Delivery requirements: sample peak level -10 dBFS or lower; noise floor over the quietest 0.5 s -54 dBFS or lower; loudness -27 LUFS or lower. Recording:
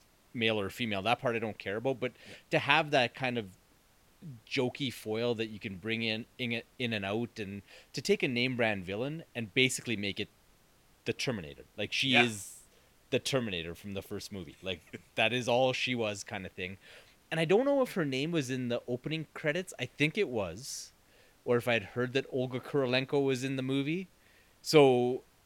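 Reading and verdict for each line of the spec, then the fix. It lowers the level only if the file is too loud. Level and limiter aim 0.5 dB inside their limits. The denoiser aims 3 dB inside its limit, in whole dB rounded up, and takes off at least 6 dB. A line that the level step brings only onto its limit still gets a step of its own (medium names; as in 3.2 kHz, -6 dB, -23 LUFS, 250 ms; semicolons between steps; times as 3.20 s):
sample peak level -6.5 dBFS: fail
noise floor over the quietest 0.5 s -65 dBFS: pass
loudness -32.0 LUFS: pass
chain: peak limiter -10.5 dBFS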